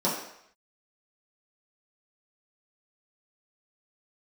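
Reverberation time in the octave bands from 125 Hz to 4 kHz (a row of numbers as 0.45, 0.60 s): 0.55, 0.55, 0.70, 0.75, 0.75, 0.70 s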